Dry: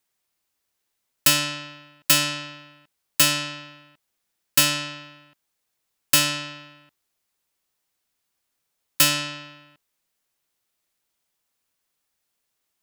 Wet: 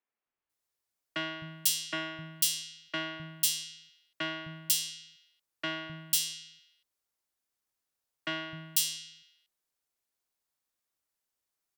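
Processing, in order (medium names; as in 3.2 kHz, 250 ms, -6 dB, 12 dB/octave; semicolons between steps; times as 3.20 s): three bands offset in time mids, lows, highs 280/540 ms, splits 160/2600 Hz; speed mistake 44.1 kHz file played as 48 kHz; trim -8 dB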